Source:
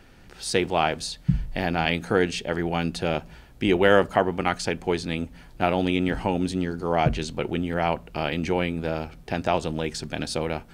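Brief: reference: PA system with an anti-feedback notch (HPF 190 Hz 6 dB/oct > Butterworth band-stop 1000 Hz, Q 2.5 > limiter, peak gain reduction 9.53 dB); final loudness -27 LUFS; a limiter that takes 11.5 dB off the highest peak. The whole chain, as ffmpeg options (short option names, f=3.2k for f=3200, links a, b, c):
-af "alimiter=limit=-15dB:level=0:latency=1,highpass=f=190:p=1,asuperstop=centerf=1000:order=8:qfactor=2.5,volume=8.5dB,alimiter=limit=-15.5dB:level=0:latency=1"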